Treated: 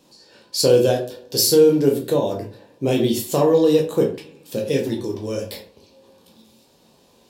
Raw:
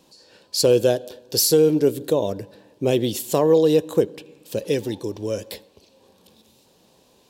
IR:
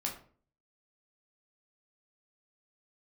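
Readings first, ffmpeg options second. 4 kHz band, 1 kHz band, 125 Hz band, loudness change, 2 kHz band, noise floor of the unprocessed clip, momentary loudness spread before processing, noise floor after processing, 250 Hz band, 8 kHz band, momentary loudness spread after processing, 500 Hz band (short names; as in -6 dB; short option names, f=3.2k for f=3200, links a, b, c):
+1.5 dB, +2.5 dB, +2.0 dB, +1.5 dB, +1.5 dB, -58 dBFS, 14 LU, -56 dBFS, +2.5 dB, +0.5 dB, 16 LU, +1.5 dB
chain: -filter_complex "[1:a]atrim=start_sample=2205,afade=t=out:st=0.2:d=0.01,atrim=end_sample=9261[a];[0:a][a]afir=irnorm=-1:irlink=0"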